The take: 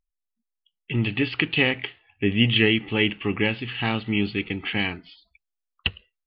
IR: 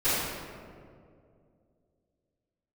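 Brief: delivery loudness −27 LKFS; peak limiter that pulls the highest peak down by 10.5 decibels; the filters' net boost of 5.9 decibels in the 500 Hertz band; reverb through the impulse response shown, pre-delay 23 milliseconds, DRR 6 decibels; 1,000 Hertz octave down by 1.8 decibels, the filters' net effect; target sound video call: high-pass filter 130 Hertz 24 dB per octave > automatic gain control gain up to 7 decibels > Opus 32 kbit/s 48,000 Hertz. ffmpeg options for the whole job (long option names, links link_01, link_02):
-filter_complex "[0:a]equalizer=frequency=500:width_type=o:gain=8.5,equalizer=frequency=1000:width_type=o:gain=-6,alimiter=limit=-15dB:level=0:latency=1,asplit=2[link_01][link_02];[1:a]atrim=start_sample=2205,adelay=23[link_03];[link_02][link_03]afir=irnorm=-1:irlink=0,volume=-20dB[link_04];[link_01][link_04]amix=inputs=2:normalize=0,highpass=frequency=130:width=0.5412,highpass=frequency=130:width=1.3066,dynaudnorm=maxgain=7dB,volume=-0.5dB" -ar 48000 -c:a libopus -b:a 32k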